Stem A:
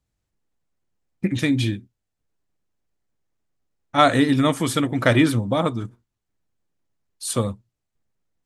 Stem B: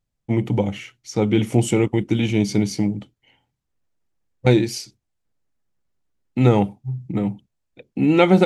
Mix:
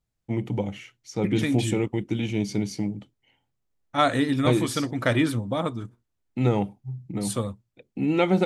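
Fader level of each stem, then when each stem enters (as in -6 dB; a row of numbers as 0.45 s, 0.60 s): -5.5 dB, -7.0 dB; 0.00 s, 0.00 s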